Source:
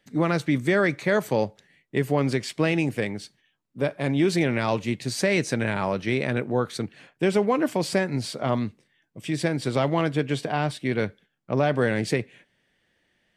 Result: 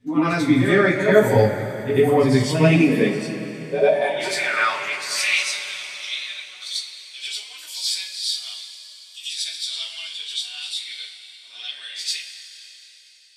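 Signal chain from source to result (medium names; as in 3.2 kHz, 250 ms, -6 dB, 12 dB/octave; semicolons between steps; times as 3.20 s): high-pass sweep 100 Hz -> 3.7 kHz, 2.27–5.58 s; spectral noise reduction 9 dB; on a send: reverse echo 92 ms -8 dB; on the sum: two-slope reverb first 0.26 s, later 3.9 s, from -18 dB, DRR -7 dB; trim -1.5 dB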